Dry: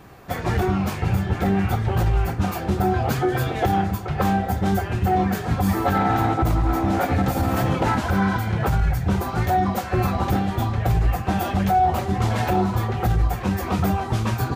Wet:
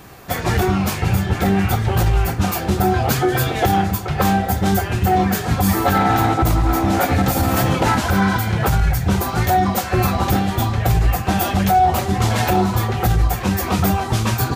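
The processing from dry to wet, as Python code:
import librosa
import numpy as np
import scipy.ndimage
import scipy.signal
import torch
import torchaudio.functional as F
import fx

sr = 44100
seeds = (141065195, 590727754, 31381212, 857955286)

y = fx.high_shelf(x, sr, hz=3100.0, db=9.0)
y = F.gain(torch.from_numpy(y), 3.5).numpy()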